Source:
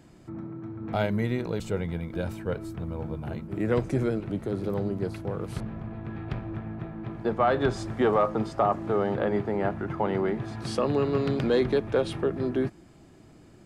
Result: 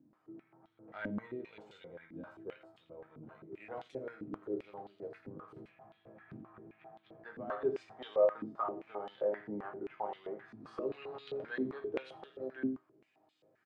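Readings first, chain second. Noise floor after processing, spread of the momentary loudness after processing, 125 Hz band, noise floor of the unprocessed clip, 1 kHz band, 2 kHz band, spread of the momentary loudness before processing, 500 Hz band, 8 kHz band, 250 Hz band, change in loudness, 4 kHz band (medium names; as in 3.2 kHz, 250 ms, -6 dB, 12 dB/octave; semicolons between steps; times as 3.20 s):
-74 dBFS, 19 LU, -24.5 dB, -53 dBFS, -13.5 dB, -11.5 dB, 12 LU, -10.5 dB, no reading, -14.5 dB, -11.0 dB, -15.0 dB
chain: chord resonator G#2 major, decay 0.22 s; delay 84 ms -10 dB; step-sequenced band-pass 7.6 Hz 260–3500 Hz; trim +7 dB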